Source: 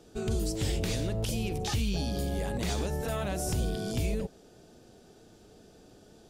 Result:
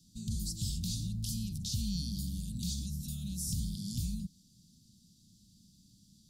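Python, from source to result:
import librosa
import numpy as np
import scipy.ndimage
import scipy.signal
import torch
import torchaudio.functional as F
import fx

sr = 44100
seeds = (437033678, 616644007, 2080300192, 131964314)

y = scipy.signal.sosfilt(scipy.signal.ellip(3, 1.0, 40, [200.0, 4100.0], 'bandstop', fs=sr, output='sos'), x)
y = fx.low_shelf(y, sr, hz=71.0, db=-10.0)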